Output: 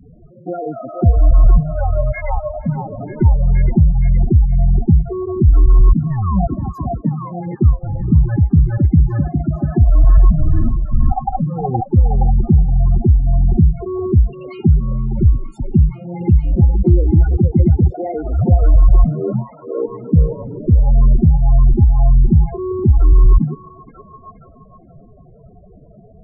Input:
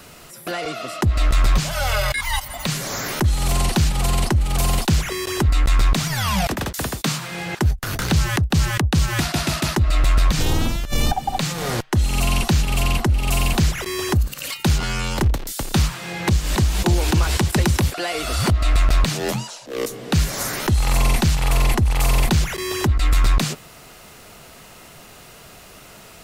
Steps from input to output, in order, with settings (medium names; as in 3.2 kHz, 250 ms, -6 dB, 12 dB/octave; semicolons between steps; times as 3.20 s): tilt shelf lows +8.5 dB, about 1.5 kHz; loudest bins only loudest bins 8; repeats whose band climbs or falls 470 ms, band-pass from 650 Hz, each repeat 0.7 oct, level -1.5 dB; trim -1 dB